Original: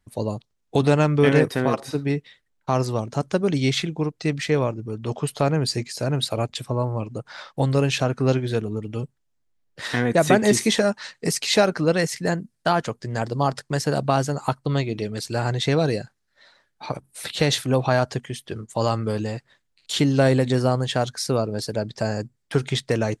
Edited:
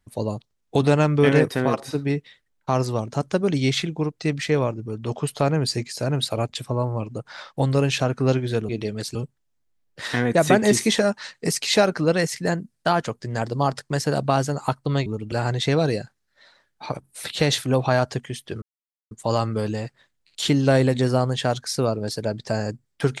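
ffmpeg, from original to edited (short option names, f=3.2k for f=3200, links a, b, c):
-filter_complex "[0:a]asplit=6[a][b][c][d][e][f];[a]atrim=end=8.692[g];[b]atrim=start=14.858:end=15.322[h];[c]atrim=start=8.948:end=14.862[i];[d]atrim=start=8.688:end=8.952[j];[e]atrim=start=15.318:end=18.62,asetpts=PTS-STARTPTS,afade=t=out:st=3.298:d=0.004:c=hsin,apad=pad_dur=0.49[k];[f]atrim=start=18.62,asetpts=PTS-STARTPTS,afade=t=in:d=0.004:c=hsin[l];[g][h]acrossfade=d=0.004:c1=hsin:c2=hsin[m];[m][i]acrossfade=d=0.004:c1=hsin:c2=hsin[n];[n][j]acrossfade=d=0.004:c1=hsin:c2=hsin[o];[k][l]concat=n=2:v=0:a=1[p];[o][p]acrossfade=d=0.004:c1=hsin:c2=hsin"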